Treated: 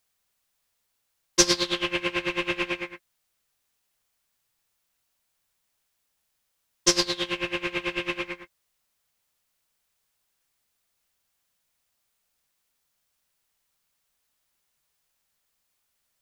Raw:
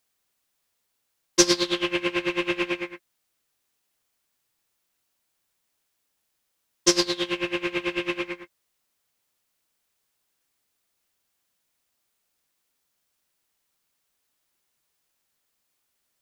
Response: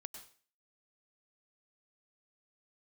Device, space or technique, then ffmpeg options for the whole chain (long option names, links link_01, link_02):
low shelf boost with a cut just above: -af "lowshelf=frequency=66:gain=6,equalizer=frequency=320:width_type=o:width=0.89:gain=-5"